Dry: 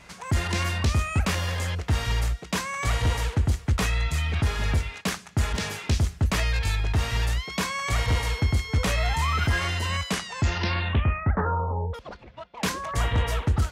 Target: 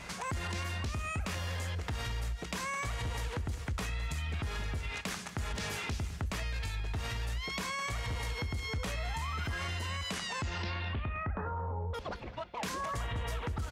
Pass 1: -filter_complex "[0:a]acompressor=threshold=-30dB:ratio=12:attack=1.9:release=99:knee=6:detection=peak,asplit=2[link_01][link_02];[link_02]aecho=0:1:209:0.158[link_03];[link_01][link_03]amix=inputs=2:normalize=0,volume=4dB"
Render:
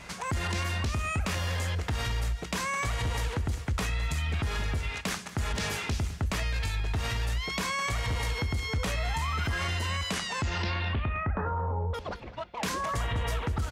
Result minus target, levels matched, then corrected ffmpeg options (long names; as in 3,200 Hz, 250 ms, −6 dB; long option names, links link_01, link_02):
downward compressor: peak gain reduction −6 dB
-filter_complex "[0:a]acompressor=threshold=-36.5dB:ratio=12:attack=1.9:release=99:knee=6:detection=peak,asplit=2[link_01][link_02];[link_02]aecho=0:1:209:0.158[link_03];[link_01][link_03]amix=inputs=2:normalize=0,volume=4dB"